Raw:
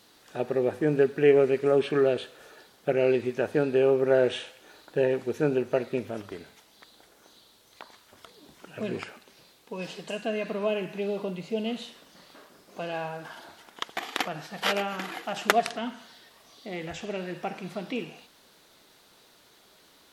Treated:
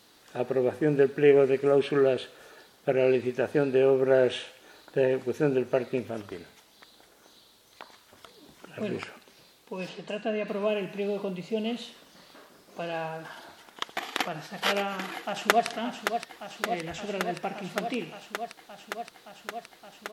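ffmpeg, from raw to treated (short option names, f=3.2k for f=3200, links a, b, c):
-filter_complex "[0:a]asettb=1/sr,asplit=3[a][b][c];[a]atrim=end=9.894[d];[b]atrim=start=9.89:end=10.48,asetpts=PTS-STARTPTS,afade=t=in:d=0.004:c=qsin,afade=t=out:st=0.586:d=0.004:c=qsin,aemphasis=mode=reproduction:type=50fm[e];[c]atrim=start=10.476[f];[d][e]acrossfade=d=0.004:c1=hsin:c2=qsin[g];[g][f]acrossfade=d=0.004:c1=qsin:c2=hsin,asplit=2[h][i];[i]afade=t=in:st=15.15:d=0.01,afade=t=out:st=15.67:d=0.01,aecho=0:1:570|1140|1710|2280|2850|3420|3990|4560|5130|5700|6270|6840:0.446684|0.379681|0.322729|0.27432|0.233172|0.198196|0.168467|0.143197|0.121717|0.103459|0.0879406|0.0747495[j];[h][j]amix=inputs=2:normalize=0"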